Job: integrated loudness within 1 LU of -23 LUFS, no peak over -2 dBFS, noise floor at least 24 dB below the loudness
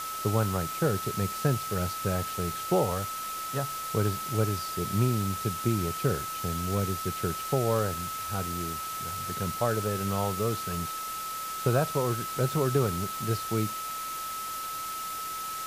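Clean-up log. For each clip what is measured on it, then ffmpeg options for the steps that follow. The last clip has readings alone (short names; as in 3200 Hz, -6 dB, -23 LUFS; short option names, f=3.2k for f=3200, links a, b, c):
steady tone 1300 Hz; tone level -34 dBFS; noise floor -36 dBFS; noise floor target -54 dBFS; loudness -30.0 LUFS; peak -11.5 dBFS; loudness target -23.0 LUFS
-> -af "bandreject=f=1.3k:w=30"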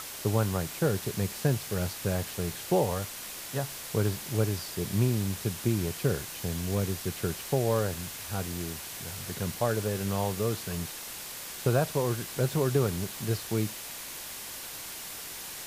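steady tone none; noise floor -41 dBFS; noise floor target -55 dBFS
-> -af "afftdn=nr=14:nf=-41"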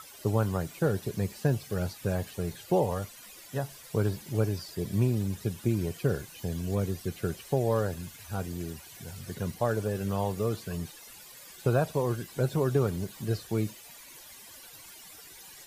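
noise floor -50 dBFS; noise floor target -55 dBFS
-> -af "afftdn=nr=6:nf=-50"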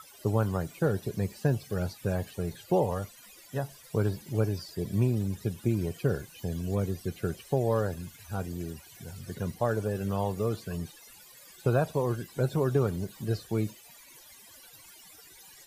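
noise floor -53 dBFS; noise floor target -55 dBFS
-> -af "afftdn=nr=6:nf=-53"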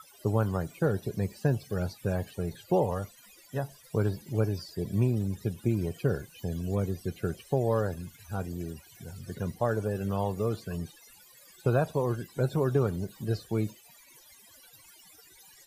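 noise floor -56 dBFS; loudness -31.0 LUFS; peak -12.5 dBFS; loudness target -23.0 LUFS
-> -af "volume=8dB"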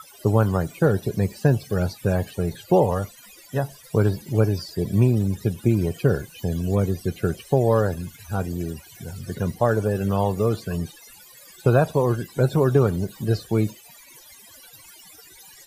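loudness -23.0 LUFS; peak -4.5 dBFS; noise floor -48 dBFS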